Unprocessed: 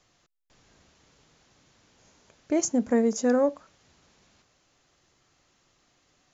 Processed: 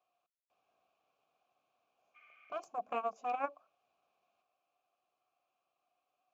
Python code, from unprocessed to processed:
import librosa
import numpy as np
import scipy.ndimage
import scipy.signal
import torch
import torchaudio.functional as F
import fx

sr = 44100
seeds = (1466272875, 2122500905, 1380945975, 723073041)

y = fx.spec_repair(x, sr, seeds[0], start_s=2.18, length_s=0.31, low_hz=1100.0, high_hz=3600.0, source='after')
y = fx.cheby_harmonics(y, sr, harmonics=(3, 8), levels_db=(-7, -43), full_scale_db=-12.5)
y = fx.vowel_filter(y, sr, vowel='a')
y = F.gain(torch.from_numpy(y), 5.0).numpy()